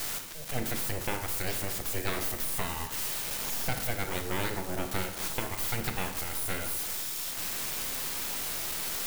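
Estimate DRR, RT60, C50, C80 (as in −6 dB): 6.0 dB, 0.90 s, 8.0 dB, 10.5 dB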